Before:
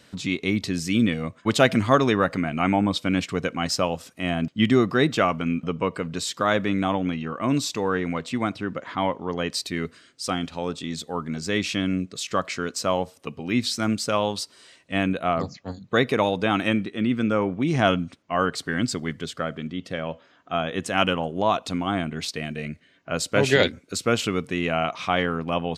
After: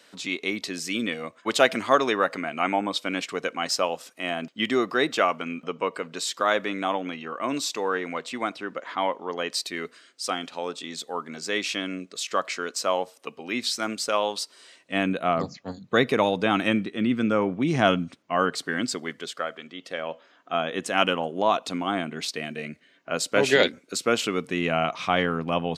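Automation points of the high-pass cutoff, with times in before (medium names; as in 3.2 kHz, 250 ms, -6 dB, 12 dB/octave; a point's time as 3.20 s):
14.42 s 390 Hz
15.33 s 140 Hz
18.18 s 140 Hz
19.59 s 560 Hz
20.57 s 240 Hz
24.32 s 240 Hz
24.76 s 110 Hz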